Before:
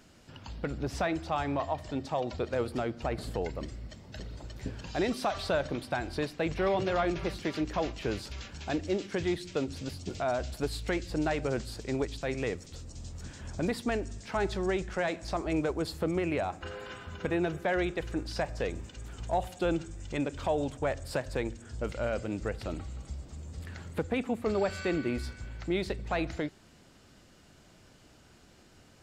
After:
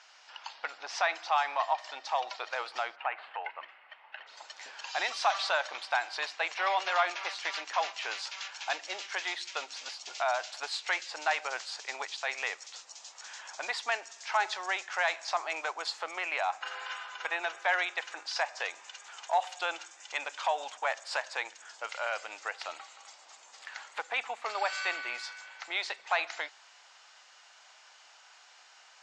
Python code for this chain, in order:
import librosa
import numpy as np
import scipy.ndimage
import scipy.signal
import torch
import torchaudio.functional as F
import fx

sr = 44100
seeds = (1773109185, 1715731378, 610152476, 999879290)

y = fx.ellip_bandpass(x, sr, low_hz=820.0, high_hz=fx.steps((0.0, 6100.0), (2.95, 2800.0), (4.26, 6700.0)), order=3, stop_db=80)
y = y * 10.0 ** (7.0 / 20.0)